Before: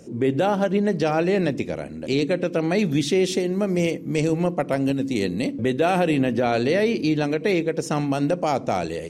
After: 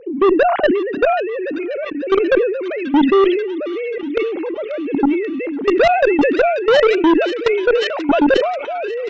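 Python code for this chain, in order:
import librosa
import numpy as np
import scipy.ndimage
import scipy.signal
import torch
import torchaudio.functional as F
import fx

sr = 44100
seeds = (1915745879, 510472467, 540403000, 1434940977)

p1 = fx.sine_speech(x, sr)
p2 = fx.level_steps(p1, sr, step_db=19)
p3 = fx.cheby_harmonics(p2, sr, harmonics=(4, 5), levels_db=(-26, -9), full_scale_db=-12.0)
p4 = p3 + fx.echo_wet_highpass(p3, sr, ms=536, feedback_pct=69, hz=2100.0, wet_db=-9.0, dry=0)
p5 = fx.sustainer(p4, sr, db_per_s=52.0)
y = p5 * 10.0 ** (6.5 / 20.0)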